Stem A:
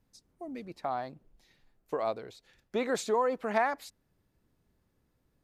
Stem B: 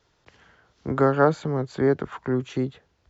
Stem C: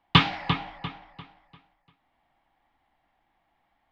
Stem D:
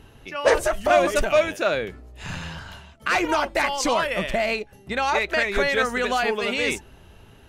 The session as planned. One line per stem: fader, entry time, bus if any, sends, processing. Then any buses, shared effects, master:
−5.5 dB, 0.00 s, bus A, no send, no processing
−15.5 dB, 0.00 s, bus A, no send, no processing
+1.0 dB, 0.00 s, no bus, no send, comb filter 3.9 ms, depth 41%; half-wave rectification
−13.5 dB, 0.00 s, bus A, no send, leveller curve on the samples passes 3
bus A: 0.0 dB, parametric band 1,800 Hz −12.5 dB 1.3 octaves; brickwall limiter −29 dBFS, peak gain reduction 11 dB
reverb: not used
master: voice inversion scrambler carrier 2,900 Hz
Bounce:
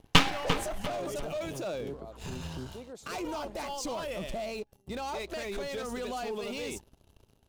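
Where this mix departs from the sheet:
stem A −5.5 dB → −13.5 dB
master: missing voice inversion scrambler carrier 2,900 Hz

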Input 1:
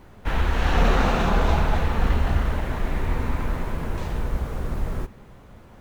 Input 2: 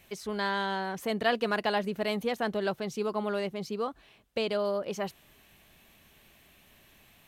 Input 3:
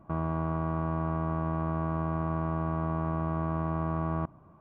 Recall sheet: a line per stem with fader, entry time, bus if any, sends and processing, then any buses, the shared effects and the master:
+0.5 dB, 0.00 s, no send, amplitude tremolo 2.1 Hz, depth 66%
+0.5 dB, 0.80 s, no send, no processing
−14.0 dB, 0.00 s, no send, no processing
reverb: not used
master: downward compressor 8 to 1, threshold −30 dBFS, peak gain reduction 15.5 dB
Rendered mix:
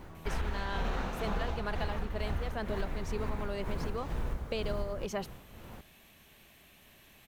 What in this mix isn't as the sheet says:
stem 2: entry 0.80 s → 0.15 s
stem 3 −14.0 dB → −21.0 dB

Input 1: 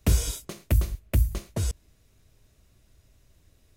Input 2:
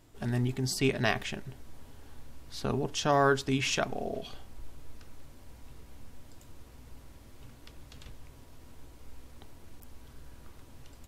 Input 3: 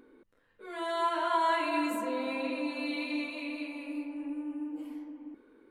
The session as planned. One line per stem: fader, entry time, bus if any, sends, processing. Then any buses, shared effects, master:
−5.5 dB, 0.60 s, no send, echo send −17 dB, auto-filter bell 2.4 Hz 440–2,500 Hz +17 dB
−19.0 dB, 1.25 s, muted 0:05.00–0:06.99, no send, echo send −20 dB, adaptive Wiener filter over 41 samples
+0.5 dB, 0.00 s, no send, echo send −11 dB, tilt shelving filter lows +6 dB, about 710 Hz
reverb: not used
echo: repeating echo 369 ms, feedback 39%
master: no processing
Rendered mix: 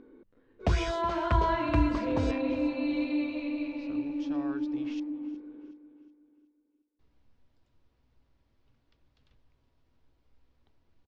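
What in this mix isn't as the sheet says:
stem 2: missing adaptive Wiener filter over 41 samples
master: extra low-pass filter 5,100 Hz 24 dB per octave

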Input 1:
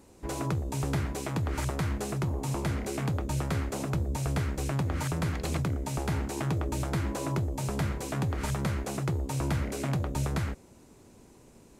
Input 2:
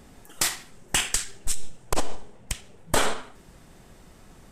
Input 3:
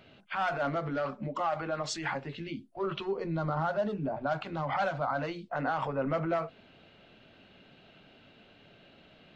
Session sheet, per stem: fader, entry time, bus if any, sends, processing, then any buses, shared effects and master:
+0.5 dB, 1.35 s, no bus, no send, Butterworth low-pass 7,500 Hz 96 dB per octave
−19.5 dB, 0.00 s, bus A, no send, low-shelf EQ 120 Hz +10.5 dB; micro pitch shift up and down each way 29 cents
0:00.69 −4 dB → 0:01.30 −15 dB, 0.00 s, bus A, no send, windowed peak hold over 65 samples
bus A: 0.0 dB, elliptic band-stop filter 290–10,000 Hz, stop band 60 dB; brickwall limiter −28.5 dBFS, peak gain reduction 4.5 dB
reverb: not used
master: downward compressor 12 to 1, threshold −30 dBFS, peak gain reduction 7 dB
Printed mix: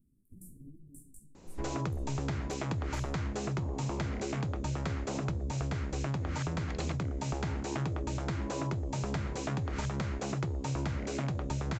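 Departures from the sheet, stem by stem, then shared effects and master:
stem 2: missing low-shelf EQ 120 Hz +10.5 dB
stem 3 −4.0 dB → −12.5 dB

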